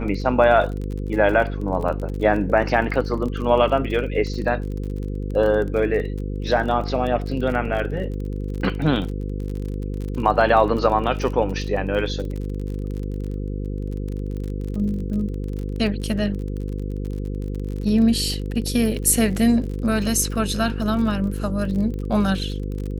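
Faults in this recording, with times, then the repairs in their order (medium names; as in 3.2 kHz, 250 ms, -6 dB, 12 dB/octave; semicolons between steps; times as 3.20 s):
buzz 50 Hz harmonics 10 -27 dBFS
crackle 37 per s -29 dBFS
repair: de-click; de-hum 50 Hz, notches 10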